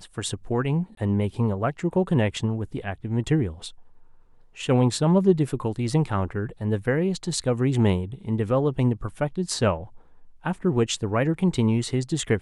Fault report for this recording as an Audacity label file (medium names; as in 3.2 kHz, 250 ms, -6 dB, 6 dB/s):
0.950000	0.970000	dropout 23 ms